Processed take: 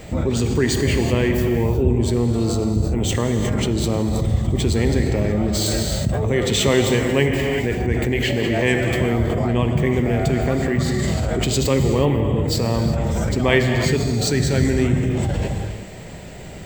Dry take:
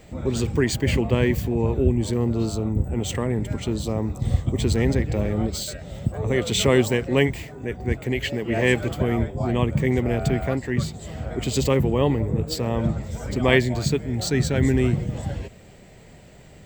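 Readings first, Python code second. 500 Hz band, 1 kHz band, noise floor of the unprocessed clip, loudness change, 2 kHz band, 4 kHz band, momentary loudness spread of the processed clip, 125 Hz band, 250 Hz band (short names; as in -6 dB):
+3.5 dB, +4.0 dB, -47 dBFS, +3.5 dB, +3.5 dB, +4.5 dB, 4 LU, +4.0 dB, +3.5 dB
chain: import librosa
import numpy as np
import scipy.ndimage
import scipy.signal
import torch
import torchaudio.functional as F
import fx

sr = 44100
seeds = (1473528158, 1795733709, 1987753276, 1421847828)

p1 = fx.rev_gated(x, sr, seeds[0], gate_ms=400, shape='flat', drr_db=5.0)
p2 = fx.over_compress(p1, sr, threshold_db=-30.0, ratio=-1.0)
y = p1 + (p2 * librosa.db_to_amplitude(0.0))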